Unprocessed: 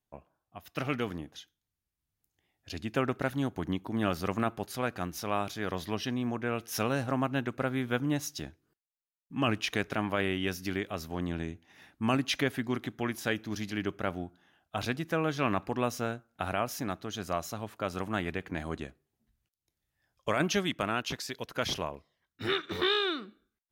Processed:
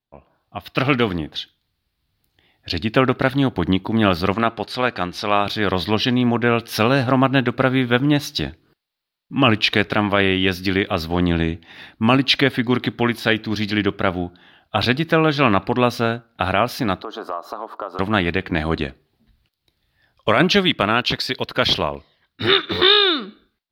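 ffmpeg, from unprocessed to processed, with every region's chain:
-filter_complex "[0:a]asettb=1/sr,asplit=3[s0][s1][s2];[s0]atrim=end=4.344[s3];[s1]atrim=start=4.34:end=5.46,asetpts=PTS-STARTPTS,afade=t=in:d=0.004:c=qsin,afade=t=out:st=1.116:d=0.004:c=qsin,lowpass=8800,lowshelf=f=230:g=-8[s4];[s2]atrim=start=5.456[s5];[s3][s4]acrossfade=d=0.004:c1=hsin:c2=qsin[s6];[s6][s5]acrossfade=d=0.004:c1=qsin:c2=hsin,asettb=1/sr,asplit=3[s7][s8][s9];[s7]atrim=end=17.024[s10];[s8]atrim=start=17.02:end=17.99,asetpts=PTS-STARTPTS,afade=t=in:d=0.004:c=qsin,afade=t=out:st=0.966:d=0.004:c=qsin,highpass=f=310:w=0.5412,highpass=f=310:w=1.3066,highshelf=f=1600:t=q:w=3:g=-12,acompressor=threshold=0.00891:ratio=4:attack=3.2:release=140:knee=1:detection=peak[s11];[s9]atrim=start=17.986[s12];[s10][s11]acrossfade=d=0.004:c1=hsin:c2=qsin[s13];[s13][s12]acrossfade=d=0.004:c1=qsin:c2=hsin,highshelf=f=5300:t=q:w=3:g=-7.5,dynaudnorm=f=110:g=5:m=6.31"

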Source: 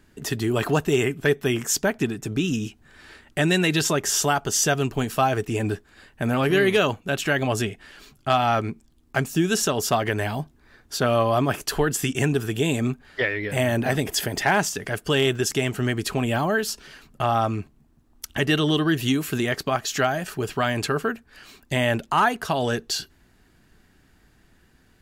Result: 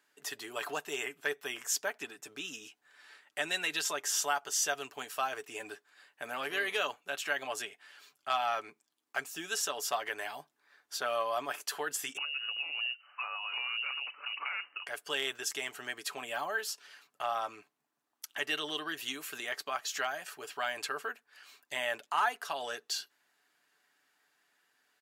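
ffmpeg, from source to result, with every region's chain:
-filter_complex "[0:a]asettb=1/sr,asplit=3[s0][s1][s2];[s0]atrim=end=12.174[s3];[s1]atrim=start=12.17:end=14.87,asetpts=PTS-STARTPTS,afade=t=in:d=0.004:c=qsin,afade=t=out:st=2.696:d=0.004:c=qsin,acompressor=threshold=0.0631:ratio=6:attack=3.2:release=140:knee=1:detection=peak,lowpass=f=2600:t=q:w=0.5098,lowpass=f=2600:t=q:w=0.6013,lowpass=f=2600:t=q:w=0.9,lowpass=f=2600:t=q:w=2.563,afreqshift=-3000[s4];[s2]atrim=start=14.866[s5];[s3][s4]acrossfade=d=0.004:c1=hsin:c2=qsin[s6];[s6][s5]acrossfade=d=0.004:c1=qsin:c2=hsin,highpass=750,aecho=1:1:6.9:0.34,volume=0.355"

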